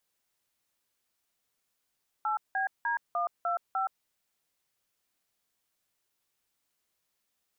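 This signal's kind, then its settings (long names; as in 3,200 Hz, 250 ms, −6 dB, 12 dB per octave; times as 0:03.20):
touch tones "8BD125", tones 121 ms, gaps 179 ms, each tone −29.5 dBFS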